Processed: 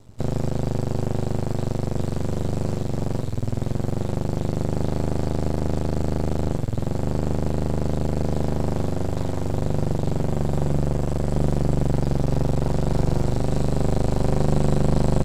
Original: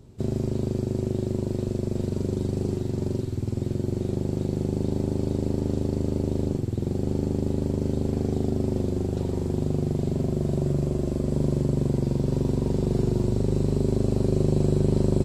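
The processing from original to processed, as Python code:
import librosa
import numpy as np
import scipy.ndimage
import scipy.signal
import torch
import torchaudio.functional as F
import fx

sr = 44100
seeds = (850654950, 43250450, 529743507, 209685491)

y = np.maximum(x, 0.0)
y = fx.peak_eq(y, sr, hz=330.0, db=-6.5, octaves=1.5)
y = y * librosa.db_to_amplitude(8.0)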